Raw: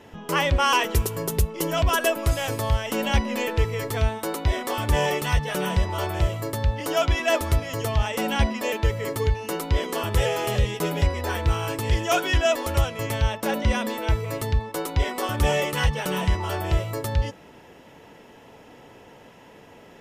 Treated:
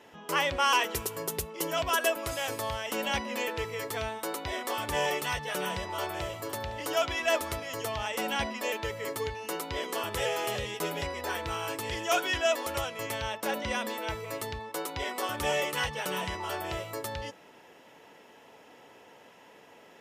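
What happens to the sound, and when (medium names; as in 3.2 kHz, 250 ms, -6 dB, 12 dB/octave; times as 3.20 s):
5.78–6.44 s: echo throw 510 ms, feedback 30%, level -12.5 dB
whole clip: high-pass 470 Hz 6 dB/octave; trim -3.5 dB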